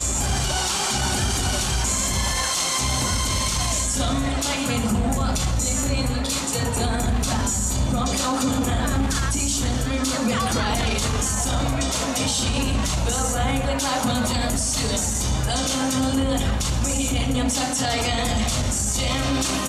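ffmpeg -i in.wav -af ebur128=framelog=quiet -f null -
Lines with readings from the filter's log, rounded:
Integrated loudness:
  I:         -22.1 LUFS
  Threshold: -32.1 LUFS
Loudness range:
  LRA:         1.2 LU
  Threshold: -42.2 LUFS
  LRA low:   -22.6 LUFS
  LRA high:  -21.4 LUFS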